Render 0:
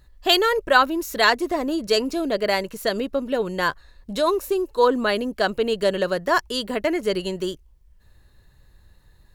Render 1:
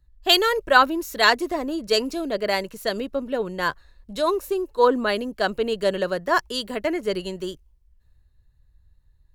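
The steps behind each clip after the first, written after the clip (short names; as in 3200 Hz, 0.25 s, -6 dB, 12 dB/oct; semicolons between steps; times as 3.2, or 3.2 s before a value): three-band expander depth 40%; gain -1.5 dB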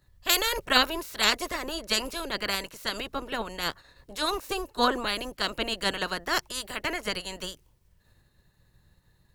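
spectral limiter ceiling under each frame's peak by 23 dB; gain -6 dB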